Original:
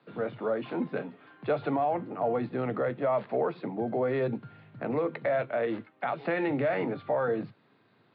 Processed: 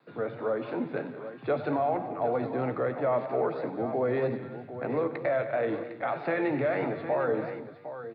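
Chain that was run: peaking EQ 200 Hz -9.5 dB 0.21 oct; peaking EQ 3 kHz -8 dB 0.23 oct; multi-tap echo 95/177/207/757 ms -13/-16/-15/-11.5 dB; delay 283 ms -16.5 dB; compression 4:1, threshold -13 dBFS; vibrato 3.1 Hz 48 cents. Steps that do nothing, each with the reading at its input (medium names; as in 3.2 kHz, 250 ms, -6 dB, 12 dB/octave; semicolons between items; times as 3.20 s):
compression, threshold -13 dBFS: peak at its input -16.5 dBFS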